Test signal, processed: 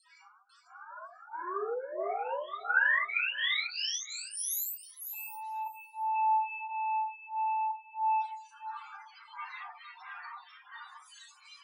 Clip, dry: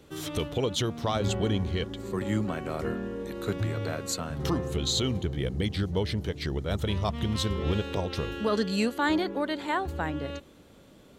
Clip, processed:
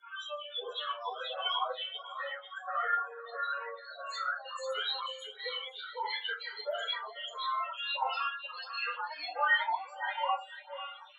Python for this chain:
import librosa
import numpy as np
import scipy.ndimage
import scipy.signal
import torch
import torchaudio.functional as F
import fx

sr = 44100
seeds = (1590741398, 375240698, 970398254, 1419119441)

p1 = x + 0.5 * 10.0 ** (-41.5 / 20.0) * np.sign(x)
p2 = scipy.signal.sosfilt(scipy.signal.bessel(2, 10000.0, 'lowpass', norm='mag', fs=sr, output='sos'), p1)
p3 = fx.dereverb_blind(p2, sr, rt60_s=0.78)
p4 = scipy.signal.sosfilt(scipy.signal.butter(4, 820.0, 'highpass', fs=sr, output='sos'), p3)
p5 = fx.rider(p4, sr, range_db=3, speed_s=2.0)
p6 = fx.leveller(p5, sr, passes=5)
p7 = 10.0 ** (-20.0 / 20.0) * np.tanh(p6 / 10.0 ** (-20.0 / 20.0))
p8 = fx.spec_topn(p7, sr, count=4)
p9 = fx.rotary(p8, sr, hz=0.6)
p10 = p9 + fx.echo_feedback(p9, sr, ms=494, feedback_pct=17, wet_db=-6.0, dry=0)
p11 = fx.room_shoebox(p10, sr, seeds[0], volume_m3=40.0, walls='mixed', distance_m=1.3)
p12 = fx.stagger_phaser(p11, sr, hz=1.5)
y = p12 * 10.0 ** (-5.5 / 20.0)